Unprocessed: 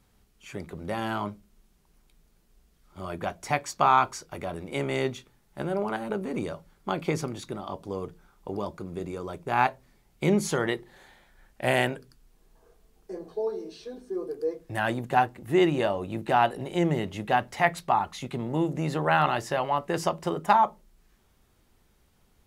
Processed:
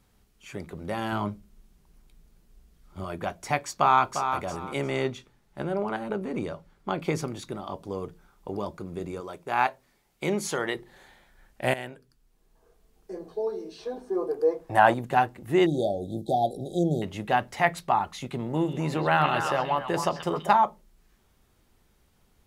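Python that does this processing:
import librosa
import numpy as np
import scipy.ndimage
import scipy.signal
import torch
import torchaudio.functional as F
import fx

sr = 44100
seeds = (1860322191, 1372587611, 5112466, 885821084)

y = fx.low_shelf(x, sr, hz=250.0, db=6.5, at=(1.12, 3.04))
y = fx.echo_throw(y, sr, start_s=3.77, length_s=0.44, ms=350, feedback_pct=25, wet_db=-7.5)
y = fx.high_shelf(y, sr, hz=fx.line((4.89, 9500.0), (7.01, 6100.0)), db=-9.0, at=(4.89, 7.01), fade=0.02)
y = fx.low_shelf(y, sr, hz=220.0, db=-12.0, at=(9.2, 10.75))
y = fx.peak_eq(y, sr, hz=840.0, db=14.0, octaves=1.4, at=(13.78, 14.94))
y = fx.brickwall_bandstop(y, sr, low_hz=820.0, high_hz=3200.0, at=(15.66, 17.02))
y = fx.echo_stepped(y, sr, ms=131, hz=3100.0, octaves=-1.4, feedback_pct=70, wet_db=-2, at=(18.55, 20.54), fade=0.02)
y = fx.edit(y, sr, fx.fade_in_from(start_s=11.74, length_s=1.44, floor_db=-14.5), tone=tone)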